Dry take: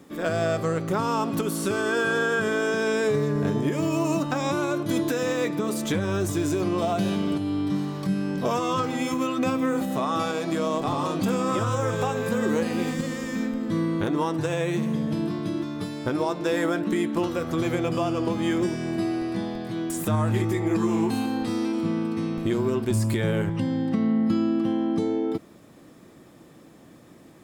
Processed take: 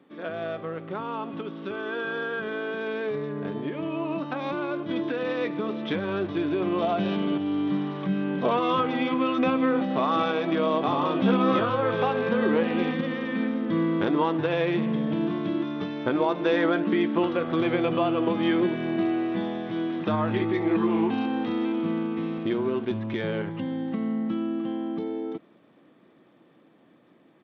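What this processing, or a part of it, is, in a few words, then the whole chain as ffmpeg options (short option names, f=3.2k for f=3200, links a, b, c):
Bluetooth headset: -filter_complex "[0:a]asettb=1/sr,asplit=3[a][b][c];[a]atrim=end=11.144[d];[b]atrim=start=11.14:end=11.7,asetpts=PTS-STARTPTS,afade=t=in:d=0.004:c=qsin,afade=t=out:st=0.556:d=0.004:c=qsin,asplit=2[e][f];[f]adelay=15,volume=-4dB[g];[e][g]amix=inputs=2:normalize=0,atrim=end_sample=24696[h];[c]atrim=start=11.696[i];[d][h]acrossfade=d=0.004:c1=hsin:c2=qsin[j];[j][i]acrossfade=d=0.004:c1=qsin:c2=hsin,highpass=190,dynaudnorm=f=930:g=13:m=11.5dB,aresample=8000,aresample=44100,volume=-7dB" -ar 32000 -c:a sbc -b:a 64k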